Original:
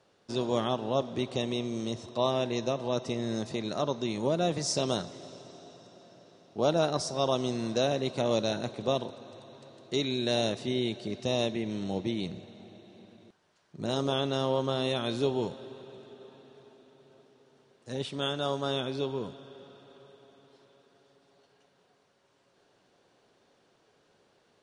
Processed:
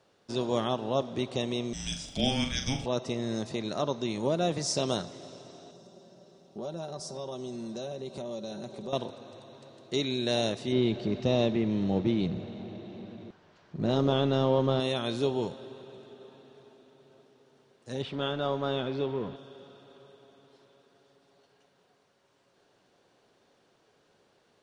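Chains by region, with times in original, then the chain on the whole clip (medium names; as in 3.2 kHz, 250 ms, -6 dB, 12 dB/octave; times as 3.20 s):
1.73–2.86 s: RIAA curve recording + frequency shift -400 Hz + flutter echo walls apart 7 m, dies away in 0.34 s
5.71–8.93 s: peaking EQ 2 kHz -8 dB 1.9 oct + comb 5.2 ms, depth 59% + compression 3:1, threshold -37 dBFS
10.72–14.80 s: companding laws mixed up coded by mu + Gaussian low-pass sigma 1.6 samples + bass shelf 430 Hz +5.5 dB
18.02–19.36 s: companding laws mixed up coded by mu + low-pass 2.9 kHz
whole clip: none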